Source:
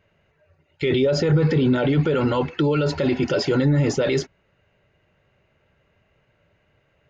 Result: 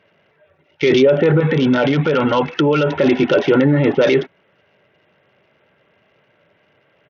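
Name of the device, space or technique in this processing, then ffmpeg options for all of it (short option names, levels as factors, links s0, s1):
Bluetooth headset: -filter_complex "[0:a]asettb=1/sr,asplit=3[s0][s1][s2];[s0]atrim=end=1.404[s3];[s1]atrim=start=1.4:end=2.91,asetpts=PTS-STARTPTS,afade=t=in:d=0.004:c=qsin,afade=t=out:st=1.506:d=0.004:c=qsin,adynamicequalizer=threshold=0.0158:dfrequency=360:dqfactor=2.3:tfrequency=360:tqfactor=2.3:attack=5:release=100:ratio=0.375:range=3.5:mode=cutabove:tftype=bell[s4];[s2]atrim=start=2.906[s5];[s3][s4]acrossfade=d=0.004:c1=hsin:c2=qsin[s6];[s6][s5]acrossfade=d=0.004:c1=qsin:c2=hsin,highpass=200,aresample=8000,aresample=44100,volume=2.51" -ar 48000 -c:a sbc -b:a 64k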